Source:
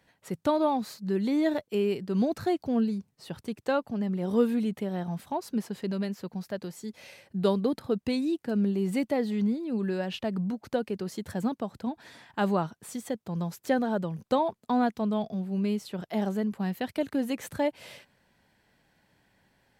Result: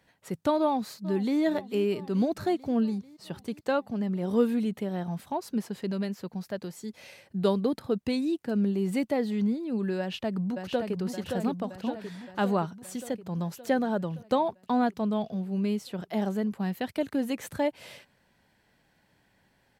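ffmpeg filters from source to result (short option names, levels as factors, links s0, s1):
-filter_complex "[0:a]asplit=2[s0][s1];[s1]afade=t=in:st=0.6:d=0.01,afade=t=out:st=1.4:d=0.01,aecho=0:1:440|880|1320|1760|2200|2640|3080|3520:0.149624|0.104736|0.0733155|0.0513209|0.0359246|0.0251472|0.0176031|0.0123221[s2];[s0][s2]amix=inputs=2:normalize=0,asplit=2[s3][s4];[s4]afade=t=in:st=9.99:d=0.01,afade=t=out:st=10.98:d=0.01,aecho=0:1:570|1140|1710|2280|2850|3420|3990|4560|5130|5700:0.562341|0.365522|0.237589|0.154433|0.100381|0.0652479|0.0424112|0.0275673|0.0179187|0.0116472[s5];[s3][s5]amix=inputs=2:normalize=0"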